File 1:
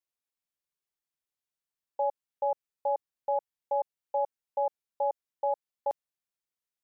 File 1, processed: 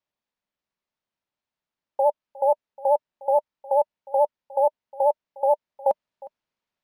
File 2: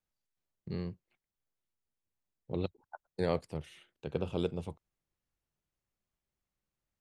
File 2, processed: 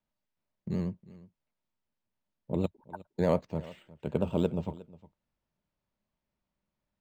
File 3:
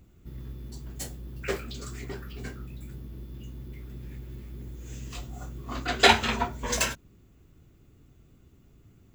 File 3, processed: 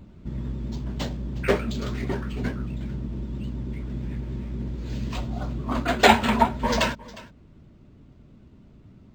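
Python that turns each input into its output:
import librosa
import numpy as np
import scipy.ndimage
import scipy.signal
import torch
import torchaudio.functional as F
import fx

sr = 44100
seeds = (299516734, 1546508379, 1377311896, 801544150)

p1 = fx.high_shelf(x, sr, hz=6400.0, db=-5.5)
p2 = fx.rider(p1, sr, range_db=3, speed_s=0.5)
p3 = fx.vibrato(p2, sr, rate_hz=9.3, depth_cents=81.0)
p4 = fx.small_body(p3, sr, hz=(210.0, 600.0, 920.0), ring_ms=30, db=8)
p5 = p4 + fx.echo_single(p4, sr, ms=359, db=-20.0, dry=0)
p6 = np.interp(np.arange(len(p5)), np.arange(len(p5))[::4], p5[::4])
y = p6 * 10.0 ** (4.5 / 20.0)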